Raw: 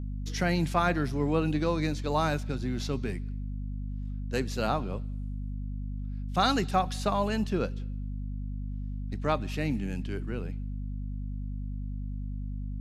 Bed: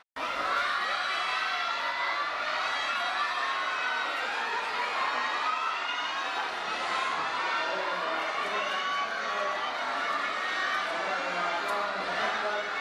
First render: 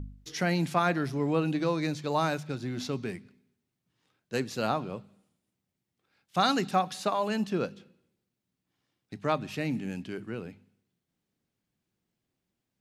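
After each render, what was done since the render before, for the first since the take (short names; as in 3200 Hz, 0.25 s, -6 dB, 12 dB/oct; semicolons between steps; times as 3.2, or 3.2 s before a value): de-hum 50 Hz, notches 5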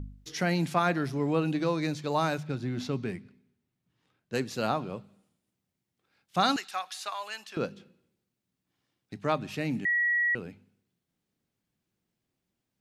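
2.38–4.35 tone controls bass +3 dB, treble -5 dB; 6.56–7.57 HPF 1300 Hz; 9.85–10.35 bleep 1920 Hz -23 dBFS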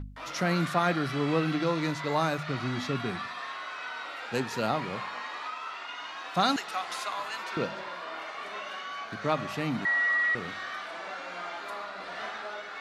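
add bed -8 dB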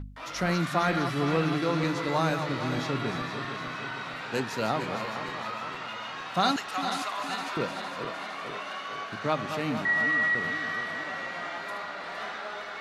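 regenerating reverse delay 0.23 s, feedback 75%, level -8 dB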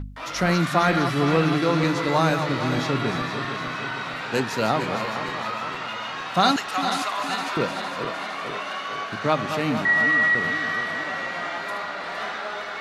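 gain +6 dB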